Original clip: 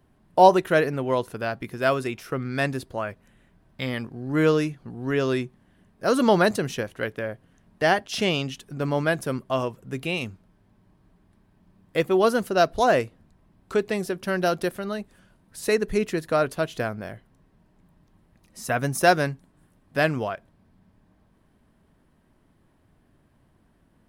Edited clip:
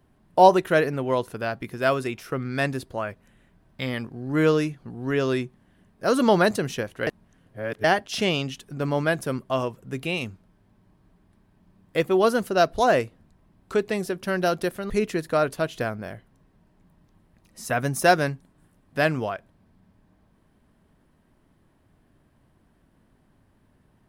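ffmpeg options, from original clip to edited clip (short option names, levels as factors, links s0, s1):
-filter_complex "[0:a]asplit=4[s0][s1][s2][s3];[s0]atrim=end=7.072[s4];[s1]atrim=start=7.068:end=7.842,asetpts=PTS-STARTPTS,areverse[s5];[s2]atrim=start=7.838:end=14.902[s6];[s3]atrim=start=15.888[s7];[s4][s5]acrossfade=d=0.004:c1=hsin:c2=hsin[s8];[s8][s6]acrossfade=d=0.004:c1=hsin:c2=hsin[s9];[s9][s7]acrossfade=d=0.004:c1=hsin:c2=hsin"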